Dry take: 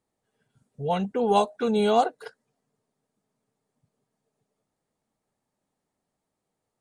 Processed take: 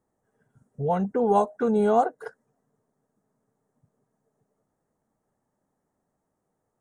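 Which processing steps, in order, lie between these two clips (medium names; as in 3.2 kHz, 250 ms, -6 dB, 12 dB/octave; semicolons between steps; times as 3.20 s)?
high-order bell 3.3 kHz -12.5 dB 1.3 oct; in parallel at 0 dB: compression, threshold -32 dBFS, peak gain reduction 15.5 dB; on the sum: treble shelf 2.6 kHz -7.5 dB; trim -1 dB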